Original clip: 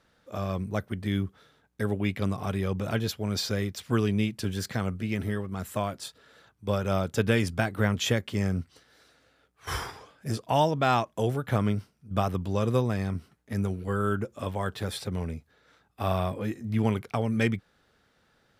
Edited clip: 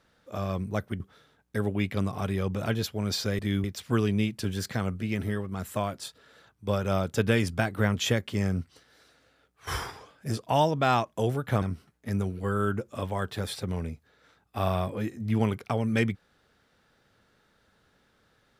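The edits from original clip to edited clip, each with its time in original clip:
0:01.00–0:01.25: move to 0:03.64
0:11.62–0:13.06: remove

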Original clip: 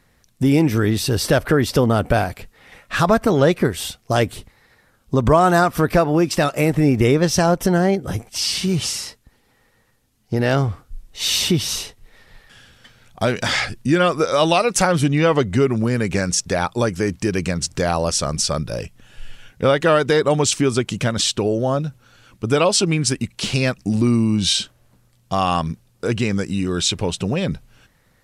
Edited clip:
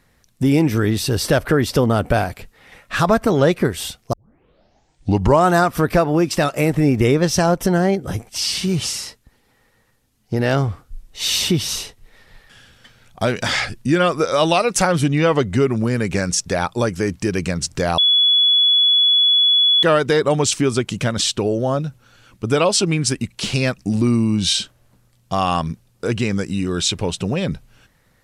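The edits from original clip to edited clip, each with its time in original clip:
0:04.13: tape start 1.32 s
0:17.98–0:19.83: beep over 3,400 Hz −11 dBFS

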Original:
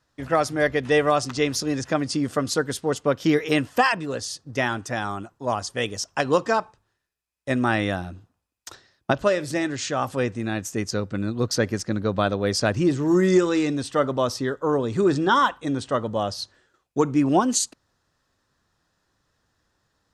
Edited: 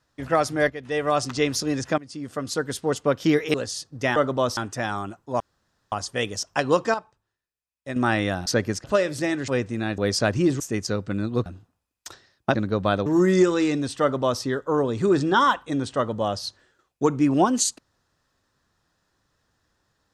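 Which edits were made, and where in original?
0:00.70–0:01.19: fade in quadratic, from −12 dB
0:01.98–0:02.87: fade in, from −20 dB
0:03.54–0:04.08: remove
0:05.53: splice in room tone 0.52 s
0:06.55–0:07.57: clip gain −8 dB
0:08.07–0:09.16: swap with 0:11.50–0:11.88
0:09.80–0:10.14: remove
0:12.39–0:13.01: move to 0:10.64
0:13.96–0:14.37: duplicate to 0:04.70

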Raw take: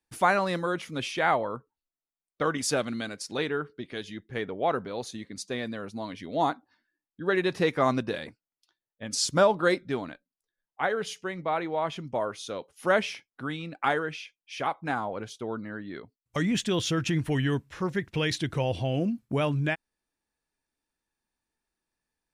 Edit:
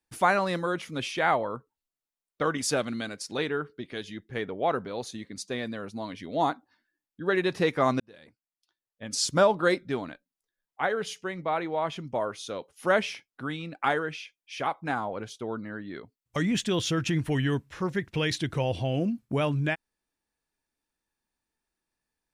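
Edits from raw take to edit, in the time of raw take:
0:08.00–0:09.25: fade in

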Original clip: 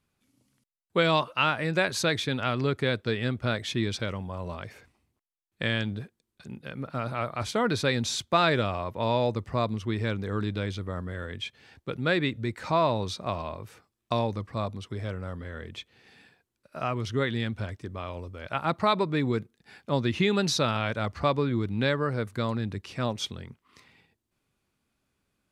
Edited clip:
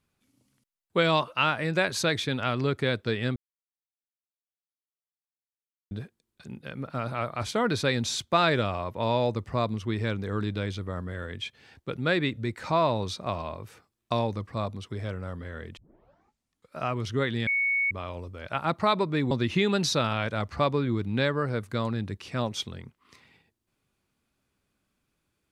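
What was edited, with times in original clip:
0:03.36–0:05.91: silence
0:15.77: tape start 1.01 s
0:17.47–0:17.91: beep over 2,220 Hz −22.5 dBFS
0:19.31–0:19.95: remove

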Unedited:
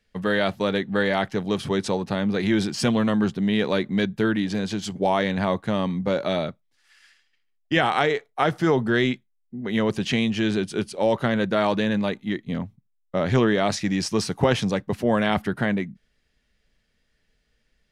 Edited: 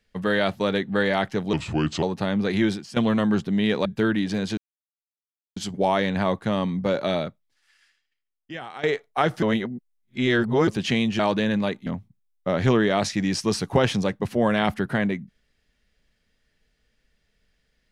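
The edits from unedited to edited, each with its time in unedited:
0:01.53–0:01.92: play speed 79%
0:02.55–0:02.86: fade out quadratic, to −15.5 dB
0:03.75–0:04.06: remove
0:04.78: splice in silence 0.99 s
0:06.39–0:08.05: fade out quadratic, to −16.5 dB
0:08.64–0:09.89: reverse
0:10.41–0:11.60: remove
0:12.27–0:12.54: remove

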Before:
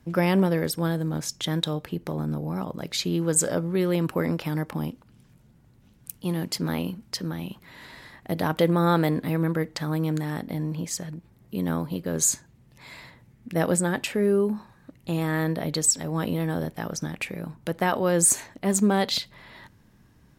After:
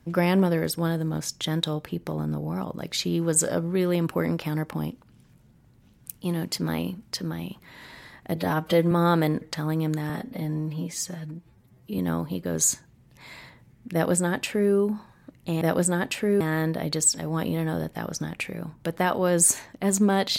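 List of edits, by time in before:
0:08.36–0:08.73: time-stretch 1.5×
0:09.23–0:09.65: remove
0:10.33–0:11.59: time-stretch 1.5×
0:13.54–0:14.33: duplicate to 0:15.22

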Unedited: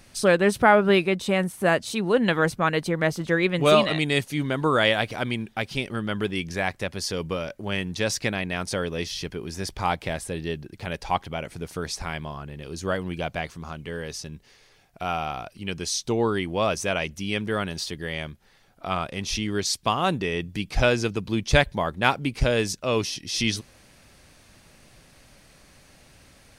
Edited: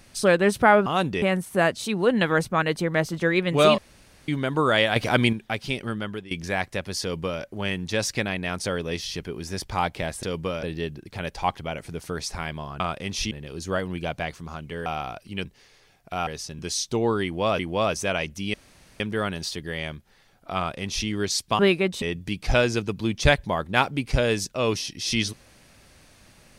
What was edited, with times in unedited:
0:00.86–0:01.29: swap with 0:19.94–0:20.30
0:03.85–0:04.35: fill with room tone
0:05.03–0:05.40: clip gain +7.5 dB
0:05.97–0:06.38: fade out, to −17.5 dB
0:07.09–0:07.49: duplicate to 0:10.30
0:14.02–0:14.34: swap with 0:15.16–0:15.75
0:16.40–0:16.75: repeat, 2 plays
0:17.35: splice in room tone 0.46 s
0:18.92–0:19.43: duplicate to 0:12.47

